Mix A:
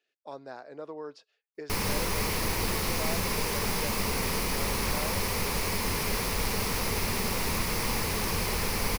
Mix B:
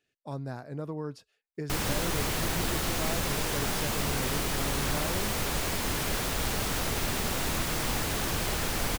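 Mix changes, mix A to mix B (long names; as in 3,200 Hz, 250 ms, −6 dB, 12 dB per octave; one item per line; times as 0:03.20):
speech: remove Chebyshev band-pass filter 460–5,000 Hz, order 2
background: remove EQ curve with evenly spaced ripples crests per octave 0.86, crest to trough 7 dB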